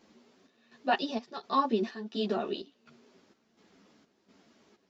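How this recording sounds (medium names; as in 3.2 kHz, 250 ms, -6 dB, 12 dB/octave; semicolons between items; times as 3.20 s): chopped level 1.4 Hz, depth 65%, duty 65%; a shimmering, thickened sound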